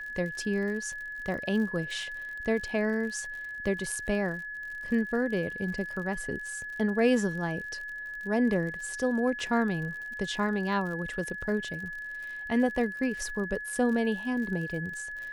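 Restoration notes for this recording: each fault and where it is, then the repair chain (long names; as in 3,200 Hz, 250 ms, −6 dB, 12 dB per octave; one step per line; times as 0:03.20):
surface crackle 59 per second −38 dBFS
whistle 1,700 Hz −36 dBFS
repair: click removal
notch filter 1,700 Hz, Q 30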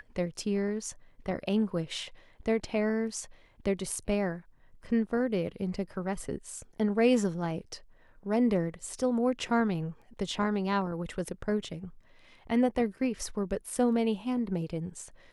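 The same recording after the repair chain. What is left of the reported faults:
none of them is left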